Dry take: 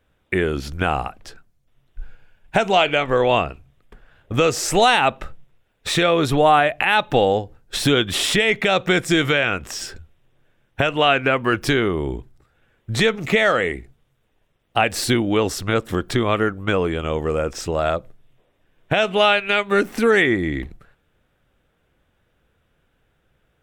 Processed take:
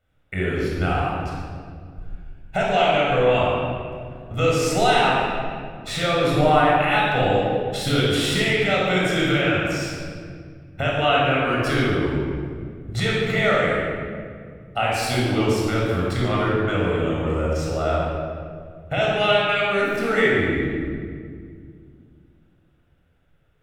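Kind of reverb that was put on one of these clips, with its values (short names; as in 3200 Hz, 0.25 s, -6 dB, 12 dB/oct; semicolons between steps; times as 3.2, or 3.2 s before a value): shoebox room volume 3800 m³, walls mixed, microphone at 6.9 m; gain -11 dB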